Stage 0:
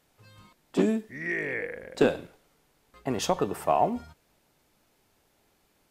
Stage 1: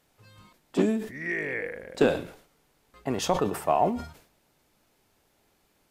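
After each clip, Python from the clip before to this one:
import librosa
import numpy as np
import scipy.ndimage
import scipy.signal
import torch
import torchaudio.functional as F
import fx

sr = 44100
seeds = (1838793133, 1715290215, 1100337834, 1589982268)

y = fx.sustainer(x, sr, db_per_s=110.0)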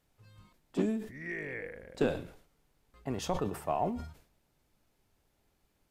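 y = fx.low_shelf(x, sr, hz=130.0, db=12.0)
y = y * librosa.db_to_amplitude(-9.0)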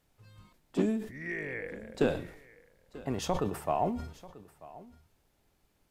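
y = x + 10.0 ** (-19.5 / 20.0) * np.pad(x, (int(939 * sr / 1000.0), 0))[:len(x)]
y = y * librosa.db_to_amplitude(2.0)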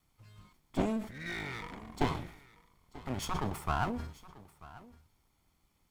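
y = fx.lower_of_two(x, sr, delay_ms=0.9)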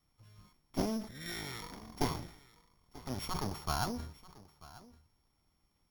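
y = np.r_[np.sort(x[:len(x) // 8 * 8].reshape(-1, 8), axis=1).ravel(), x[len(x) // 8 * 8:]]
y = y * librosa.db_to_amplitude(-2.5)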